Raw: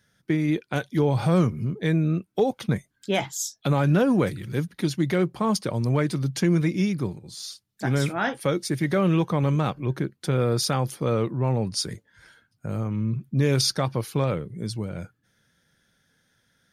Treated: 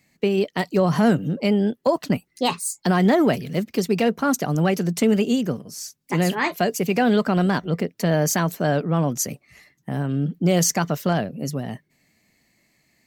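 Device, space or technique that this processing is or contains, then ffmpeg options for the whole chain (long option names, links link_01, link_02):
nightcore: -af "asetrate=56448,aresample=44100,volume=3dB"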